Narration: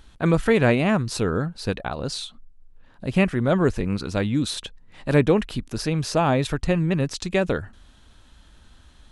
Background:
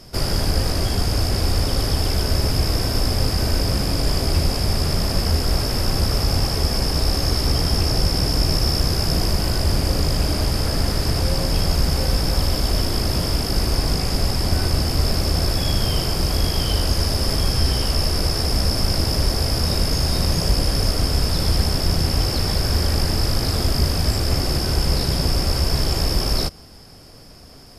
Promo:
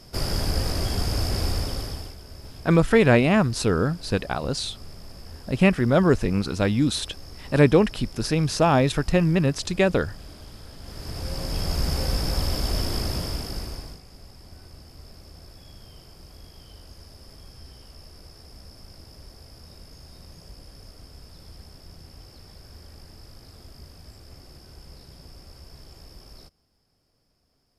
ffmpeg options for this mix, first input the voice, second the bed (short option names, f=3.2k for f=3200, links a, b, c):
-filter_complex "[0:a]adelay=2450,volume=1.5dB[a];[1:a]volume=12.5dB,afade=t=out:st=1.43:d=0.73:silence=0.125893,afade=t=in:st=10.8:d=1.1:silence=0.133352,afade=t=out:st=12.96:d=1.05:silence=0.0891251[b];[a][b]amix=inputs=2:normalize=0"